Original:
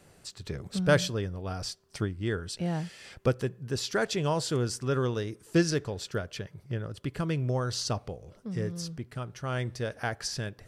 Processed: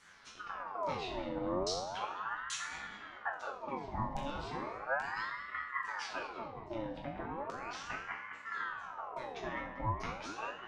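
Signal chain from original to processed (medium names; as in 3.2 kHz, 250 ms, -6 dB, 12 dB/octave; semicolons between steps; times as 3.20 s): compression 6:1, threshold -35 dBFS, peak gain reduction 16.5 dB; LFO low-pass saw down 1.2 Hz 410–6300 Hz; chord resonator F#2 minor, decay 0.58 s; filtered feedback delay 206 ms, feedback 74%, low-pass 1.6 kHz, level -8 dB; ring modulator with a swept carrier 1 kHz, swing 60%, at 0.36 Hz; trim +16 dB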